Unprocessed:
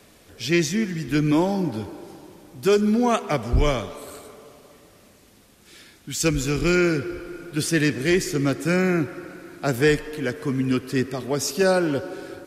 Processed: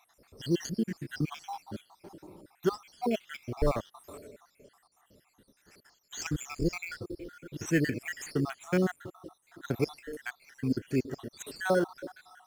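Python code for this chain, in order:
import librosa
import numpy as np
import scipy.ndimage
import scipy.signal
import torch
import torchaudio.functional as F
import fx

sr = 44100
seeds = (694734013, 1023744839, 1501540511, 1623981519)

p1 = fx.spec_dropout(x, sr, seeds[0], share_pct=72)
p2 = fx.sample_hold(p1, sr, seeds[1], rate_hz=4800.0, jitter_pct=0)
p3 = p1 + (p2 * librosa.db_to_amplitude(-9.0))
y = p3 * librosa.db_to_amplitude(-7.0)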